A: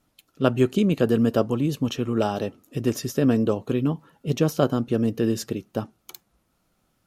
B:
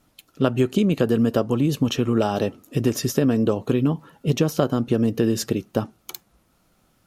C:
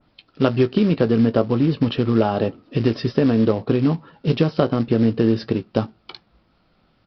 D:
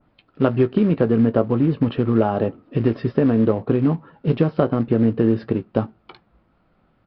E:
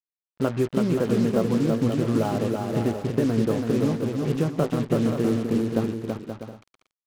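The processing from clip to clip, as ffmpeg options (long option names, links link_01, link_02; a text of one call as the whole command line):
ffmpeg -i in.wav -af "acompressor=threshold=-22dB:ratio=5,volume=6.5dB" out.wav
ffmpeg -i in.wav -filter_complex "[0:a]aresample=11025,acrusher=bits=5:mode=log:mix=0:aa=0.000001,aresample=44100,asplit=2[link_01][link_02];[link_02]adelay=18,volume=-12.5dB[link_03];[link_01][link_03]amix=inputs=2:normalize=0,adynamicequalizer=threshold=0.01:dfrequency=2100:dqfactor=0.7:tfrequency=2100:tqfactor=0.7:attack=5:release=100:ratio=0.375:range=3:mode=cutabove:tftype=highshelf,volume=2dB" out.wav
ffmpeg -i in.wav -af "lowpass=2000" out.wav
ffmpeg -i in.wav -filter_complex "[0:a]agate=range=-33dB:threshold=-52dB:ratio=3:detection=peak,acrusher=bits=4:mix=0:aa=0.5,asplit=2[link_01][link_02];[link_02]aecho=0:1:330|528|646.8|718.1|760.8:0.631|0.398|0.251|0.158|0.1[link_03];[link_01][link_03]amix=inputs=2:normalize=0,volume=-6.5dB" out.wav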